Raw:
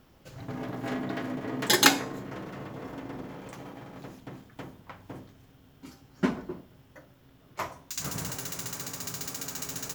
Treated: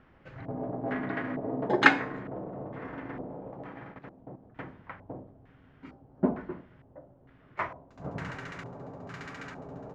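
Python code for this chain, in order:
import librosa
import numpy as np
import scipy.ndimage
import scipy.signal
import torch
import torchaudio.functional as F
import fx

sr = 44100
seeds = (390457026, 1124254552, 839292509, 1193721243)

y = fx.level_steps(x, sr, step_db=11, at=(3.92, 4.54), fade=0.02)
y = fx.filter_lfo_lowpass(y, sr, shape='square', hz=1.1, low_hz=680.0, high_hz=1900.0, q=2.0)
y = y * librosa.db_to_amplitude(-1.0)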